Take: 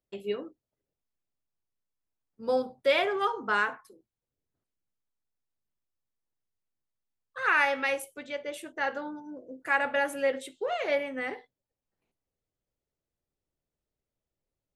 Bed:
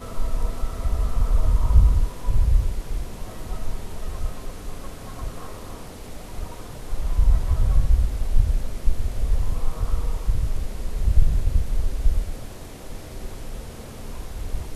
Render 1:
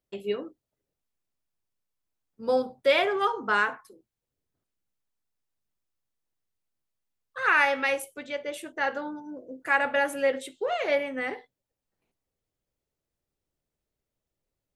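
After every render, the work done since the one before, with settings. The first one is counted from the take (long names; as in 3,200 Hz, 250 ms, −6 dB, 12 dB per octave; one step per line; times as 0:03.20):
level +2.5 dB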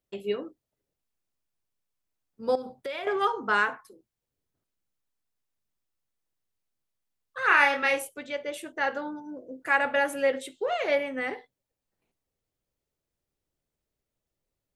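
0:02.55–0:03.07: downward compressor, threshold −32 dBFS
0:07.47–0:08.09: double-tracking delay 28 ms −3.5 dB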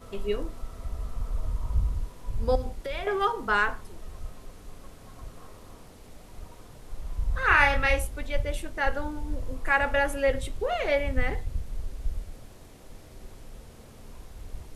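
mix in bed −11 dB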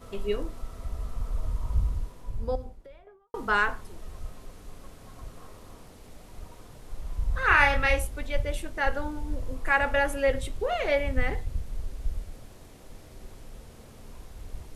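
0:01.81–0:03.34: fade out and dull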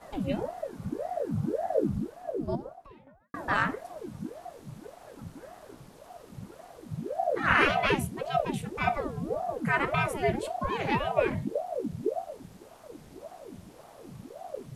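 ring modulator whose carrier an LFO sweeps 430 Hz, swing 70%, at 1.8 Hz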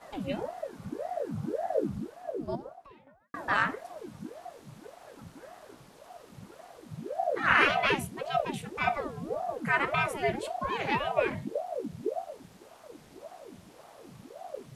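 low-pass filter 3,800 Hz 6 dB per octave
spectral tilt +2 dB per octave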